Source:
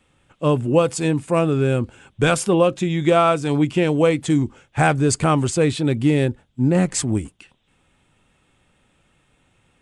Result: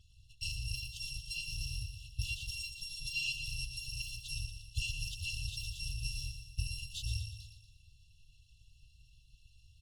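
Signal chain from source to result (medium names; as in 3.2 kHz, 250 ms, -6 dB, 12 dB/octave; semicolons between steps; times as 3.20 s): bit-reversed sample order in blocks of 256 samples; compression 8:1, threshold -30 dBFS, peak gain reduction 19 dB; brick-wall FIR band-stop 180–2600 Hz; tape spacing loss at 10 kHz 25 dB; feedback delay 118 ms, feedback 53%, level -8 dB; trim +8 dB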